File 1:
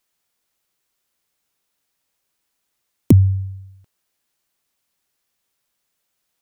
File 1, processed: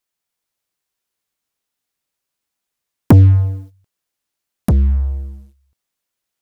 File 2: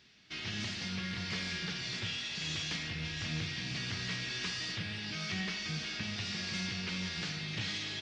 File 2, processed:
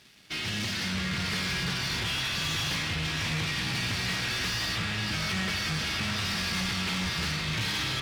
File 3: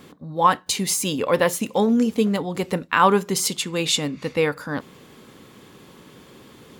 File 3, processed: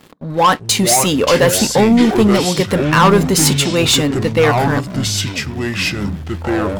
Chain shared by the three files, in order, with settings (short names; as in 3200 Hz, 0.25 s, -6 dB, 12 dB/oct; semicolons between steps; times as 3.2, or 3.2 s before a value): sample leveller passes 3; echoes that change speed 0.294 s, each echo -6 st, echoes 3, each echo -6 dB; gain -1 dB